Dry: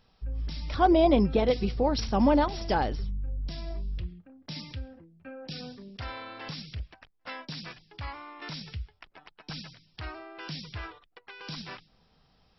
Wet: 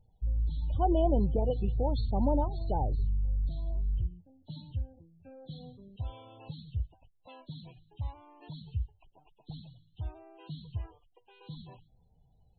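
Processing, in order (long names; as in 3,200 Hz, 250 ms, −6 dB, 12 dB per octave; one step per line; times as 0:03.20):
hearing-aid frequency compression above 2,600 Hz 1.5 to 1
low-pass filter 3,700 Hz 6 dB per octave
flat-topped bell 1,600 Hz −13 dB 1.2 octaves
spectral peaks only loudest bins 32
low shelf with overshoot 160 Hz +8.5 dB, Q 1.5
level −6 dB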